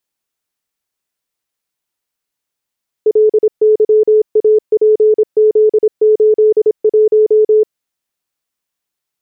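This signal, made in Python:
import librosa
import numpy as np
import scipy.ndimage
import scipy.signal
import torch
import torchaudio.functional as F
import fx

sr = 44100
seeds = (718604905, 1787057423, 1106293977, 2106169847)

y = fx.morse(sr, text='LYAPZ81', wpm=26, hz=430.0, level_db=-5.5)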